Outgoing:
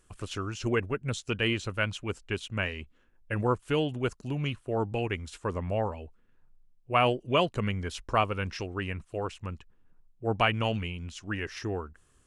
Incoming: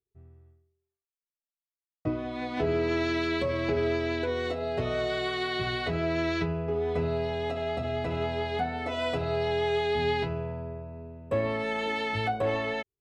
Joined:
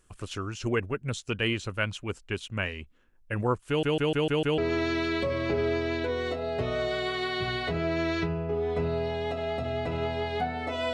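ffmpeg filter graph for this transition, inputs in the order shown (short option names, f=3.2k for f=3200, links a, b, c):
-filter_complex "[0:a]apad=whole_dur=10.93,atrim=end=10.93,asplit=6[a][b][c][d][e][f];[a]atrim=end=3.832[g];[b]atrim=start=3.678:end=3.832[h];[c]atrim=start=3.678:end=3.832[i];[d]atrim=start=3.678:end=3.832[j];[e]atrim=start=3.678:end=3.832[k];[f]atrim=start=3.678:end=3.832[l];[1:a]atrim=start=2.768:end=9.12[m];[g][h]acrossfade=d=0.004:c1=hsin:c2=hsin[n];[n][i]acrossfade=d=0.004:c1=hsin:c2=hsin[o];[o][j]acrossfade=d=0.004:c1=hsin:c2=hsin[p];[p][k]acrossfade=d=0.004:c1=hsin:c2=hsin[q];[q][l]acrossfade=d=0.004:c1=hsin:c2=hsin[r];[r][m]acrossfade=d=0.004:c1=hsin:c2=hsin"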